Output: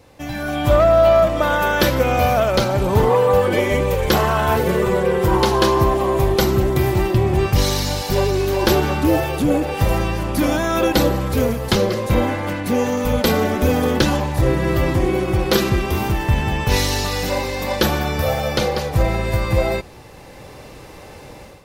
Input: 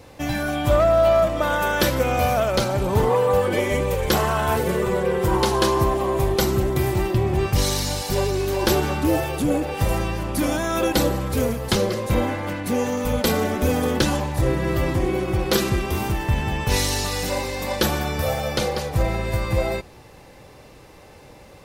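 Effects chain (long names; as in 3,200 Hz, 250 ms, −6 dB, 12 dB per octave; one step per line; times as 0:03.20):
dynamic equaliser 8,900 Hz, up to −7 dB, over −44 dBFS, Q 1.2
automatic gain control gain up to 11.5 dB
level −4 dB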